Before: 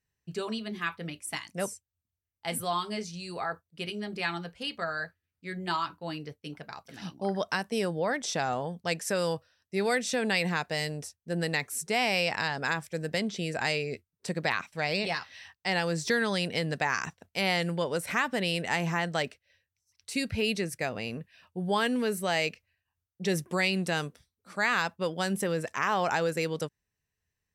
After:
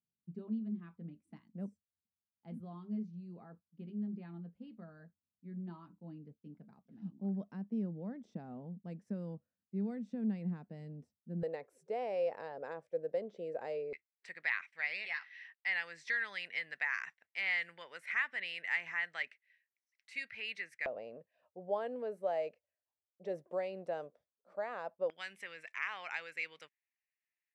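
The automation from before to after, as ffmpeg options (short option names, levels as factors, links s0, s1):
-af "asetnsamples=n=441:p=0,asendcmd='11.43 bandpass f 520;13.93 bandpass f 2000;20.86 bandpass f 590;25.1 bandpass f 2200',bandpass=f=210:t=q:w=4.5:csg=0"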